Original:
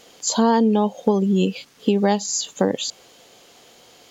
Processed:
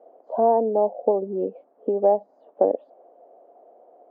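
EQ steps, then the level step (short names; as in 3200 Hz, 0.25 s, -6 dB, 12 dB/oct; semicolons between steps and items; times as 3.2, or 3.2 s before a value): HPF 290 Hz 24 dB/oct; ladder low-pass 720 Hz, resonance 70%; +6.5 dB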